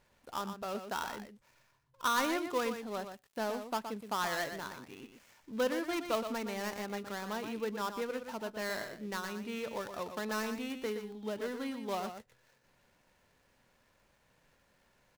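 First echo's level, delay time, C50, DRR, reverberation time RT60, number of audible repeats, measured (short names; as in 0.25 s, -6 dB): -8.5 dB, 0.12 s, none, none, none, 1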